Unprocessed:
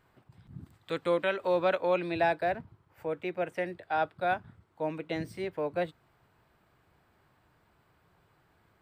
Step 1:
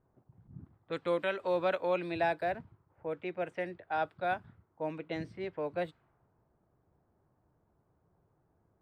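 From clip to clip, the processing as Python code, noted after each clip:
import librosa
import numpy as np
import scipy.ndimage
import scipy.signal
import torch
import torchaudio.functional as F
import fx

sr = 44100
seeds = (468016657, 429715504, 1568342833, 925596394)

y = fx.env_lowpass(x, sr, base_hz=690.0, full_db=-27.0)
y = F.gain(torch.from_numpy(y), -3.5).numpy()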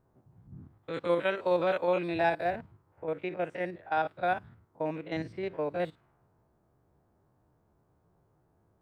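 y = fx.spec_steps(x, sr, hold_ms=50)
y = F.gain(torch.from_numpy(y), 4.5).numpy()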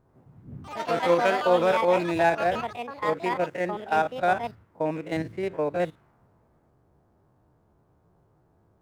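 y = scipy.signal.medfilt(x, 9)
y = fx.echo_pitch(y, sr, ms=90, semitones=5, count=3, db_per_echo=-6.0)
y = F.gain(torch.from_numpy(y), 5.5).numpy()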